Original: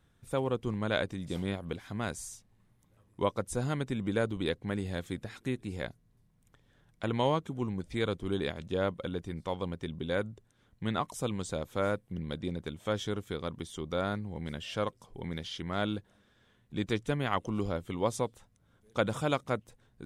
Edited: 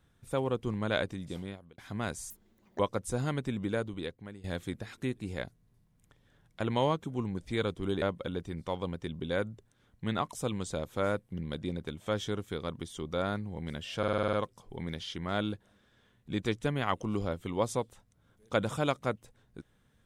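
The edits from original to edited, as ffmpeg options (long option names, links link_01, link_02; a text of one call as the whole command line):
ffmpeg -i in.wav -filter_complex "[0:a]asplit=13[link_01][link_02][link_03][link_04][link_05][link_06][link_07][link_08][link_09][link_10][link_11][link_12][link_13];[link_01]atrim=end=1.78,asetpts=PTS-STARTPTS,afade=type=out:start_time=1.09:duration=0.69[link_14];[link_02]atrim=start=1.78:end=2.304,asetpts=PTS-STARTPTS,afade=type=in:duration=0.004:curve=hsin[link_15];[link_03]atrim=start=2.3:end=3.22,asetpts=PTS-STARTPTS,asetrate=82908,aresample=44100[link_16];[link_04]atrim=start=3.216:end=4.87,asetpts=PTS-STARTPTS,afade=type=out:start_time=0.704:duration=0.95:silence=0.125893[link_17];[link_05]atrim=start=4.87:end=8.452,asetpts=PTS-STARTPTS,afade=type=in:duration=0.004:curve=hsin:silence=0.125893[link_18];[link_06]atrim=start=8.808:end=14.822[link_19];[link_07]atrim=start=14.768:end=14.822[link_20];[link_08]atrim=start=14.768:end=14.822[link_21];[link_09]atrim=start=14.768:end=14.822[link_22];[link_10]atrim=start=14.768:end=14.822[link_23];[link_11]atrim=start=14.768:end=14.822[link_24];[link_12]atrim=start=14.768:end=14.822[link_25];[link_13]atrim=start=14.768[link_26];[link_14][link_15]concat=n=2:v=0:a=1[link_27];[link_27][link_16]acrossfade=duration=0.004:curve1=hsin:curve2=hsin[link_28];[link_17][link_18]concat=n=2:v=0:a=1[link_29];[link_28][link_29]acrossfade=duration=0.004:curve1=hsin:curve2=hsin[link_30];[link_30][link_19]acrossfade=duration=0.004:curve1=hsin:curve2=hsin[link_31];[link_31][link_20]acrossfade=duration=0.004:curve1=hsin:curve2=hsin[link_32];[link_32][link_21]acrossfade=duration=0.004:curve1=hsin:curve2=hsin[link_33];[link_33][link_22]acrossfade=duration=0.004:curve1=hsin:curve2=hsin[link_34];[link_34][link_23]acrossfade=duration=0.004:curve1=hsin:curve2=hsin[link_35];[link_35][link_24]acrossfade=duration=0.004:curve1=hsin:curve2=hsin[link_36];[link_36][link_25]acrossfade=duration=0.004:curve1=hsin:curve2=hsin[link_37];[link_37][link_26]acrossfade=duration=0.004:curve1=hsin:curve2=hsin" out.wav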